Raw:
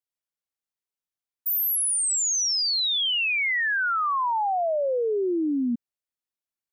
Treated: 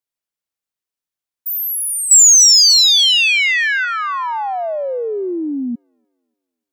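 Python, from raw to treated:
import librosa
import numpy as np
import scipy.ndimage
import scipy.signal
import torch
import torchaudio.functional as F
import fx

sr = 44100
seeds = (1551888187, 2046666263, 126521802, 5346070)

p1 = fx.tilt_eq(x, sr, slope=5.5, at=(2.11, 3.85))
p2 = fx.echo_wet_highpass(p1, sr, ms=294, feedback_pct=34, hz=1700.0, wet_db=-10.5)
p3 = 10.0 ** (-14.5 / 20.0) * np.tanh(p2 / 10.0 ** (-14.5 / 20.0))
y = p2 + (p3 * librosa.db_to_amplitude(-6.0))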